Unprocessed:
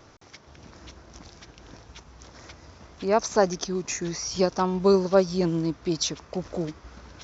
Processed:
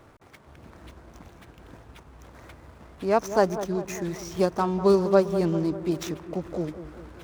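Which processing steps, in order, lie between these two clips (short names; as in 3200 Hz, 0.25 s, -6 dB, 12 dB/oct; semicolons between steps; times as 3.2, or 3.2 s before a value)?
median filter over 9 samples; dark delay 0.198 s, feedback 57%, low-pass 1400 Hz, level -11.5 dB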